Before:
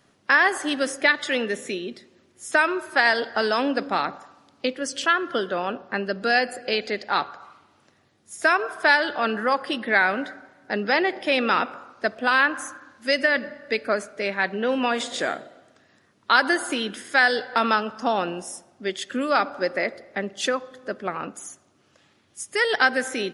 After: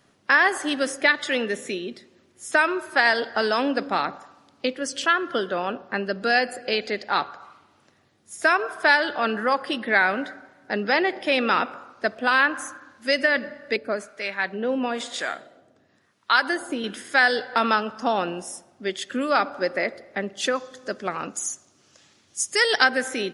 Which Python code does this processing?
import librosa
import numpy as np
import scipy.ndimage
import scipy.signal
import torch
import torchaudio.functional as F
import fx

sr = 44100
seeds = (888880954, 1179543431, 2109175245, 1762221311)

y = fx.harmonic_tremolo(x, sr, hz=1.0, depth_pct=70, crossover_hz=780.0, at=(13.76, 16.84))
y = fx.peak_eq(y, sr, hz=6400.0, db=12.0, octaves=1.3, at=(20.55, 22.84))